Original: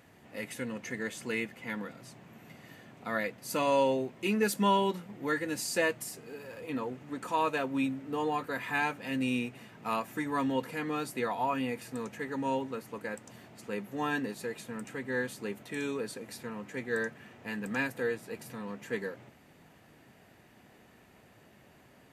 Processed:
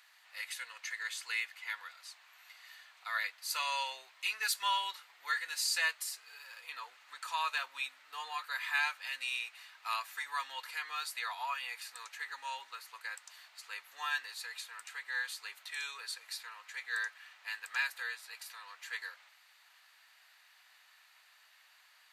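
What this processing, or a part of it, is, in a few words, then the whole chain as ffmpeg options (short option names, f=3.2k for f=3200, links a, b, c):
headphones lying on a table: -af "highpass=f=1.1k:w=0.5412,highpass=f=1.1k:w=1.3066,equalizer=f=4.2k:t=o:w=0.53:g=9"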